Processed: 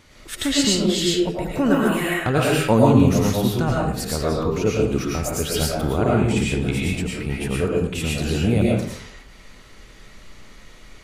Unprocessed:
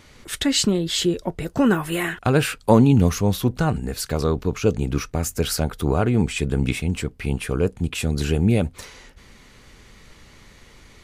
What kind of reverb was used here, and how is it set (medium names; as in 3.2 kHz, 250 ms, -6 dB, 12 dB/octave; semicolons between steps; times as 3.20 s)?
algorithmic reverb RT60 0.61 s, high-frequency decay 0.7×, pre-delay 70 ms, DRR -4 dB; trim -3 dB